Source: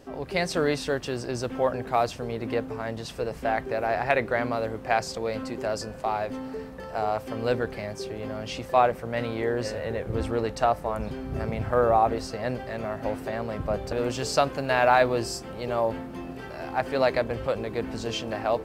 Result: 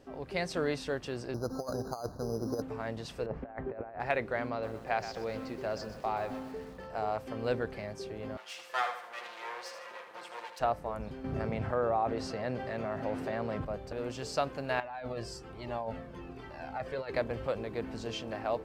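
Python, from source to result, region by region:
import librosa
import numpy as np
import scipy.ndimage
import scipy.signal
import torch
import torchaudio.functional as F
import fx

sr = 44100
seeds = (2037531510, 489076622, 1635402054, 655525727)

y = fx.chain(x, sr, fx.steep_lowpass(hz=1500.0, slope=72),
    fx.over_compress(threshold_db=-27.0, ratio=-0.5),
    fx.resample_bad(factor=8, down='none', up='hold'), at=(1.34, 2.62))
y = fx.chain(y, sr, fx.lowpass(hz=1400.0, slope=12),
    fx.over_compress(threshold_db=-32.0, ratio=-0.5), at=(3.26, 4.0))
y = fx.chain(y, sr, fx.lowpass(hz=6000.0, slope=24),
    fx.echo_crushed(ms=125, feedback_pct=55, bits=7, wet_db=-11), at=(4.5, 6.9))
y = fx.chain(y, sr, fx.lower_of_two(delay_ms=5.7),
    fx.highpass(hz=940.0, slope=12),
    fx.echo_feedback(ms=78, feedback_pct=43, wet_db=-8.5), at=(8.37, 10.6))
y = fx.chain(y, sr, fx.highpass(hz=80.0, slope=12),
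    fx.high_shelf(hz=9000.0, db=-9.5),
    fx.env_flatten(amount_pct=50), at=(11.24, 13.65))
y = fx.chain(y, sr, fx.over_compress(threshold_db=-26.0, ratio=-1.0),
    fx.high_shelf(hz=8900.0, db=-7.5),
    fx.comb_cascade(direction='falling', hz=1.2), at=(14.8, 17.14))
y = fx.rider(y, sr, range_db=3, speed_s=2.0)
y = fx.high_shelf(y, sr, hz=8000.0, db=-6.5)
y = y * librosa.db_to_amplitude(-8.0)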